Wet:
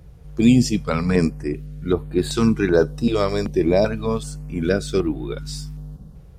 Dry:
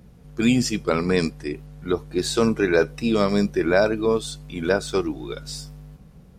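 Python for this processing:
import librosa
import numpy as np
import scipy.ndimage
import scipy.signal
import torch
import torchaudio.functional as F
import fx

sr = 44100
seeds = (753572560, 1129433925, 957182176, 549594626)

y = fx.low_shelf(x, sr, hz=300.0, db=8.5)
y = fx.filter_held_notch(y, sr, hz=2.6, low_hz=220.0, high_hz=5800.0)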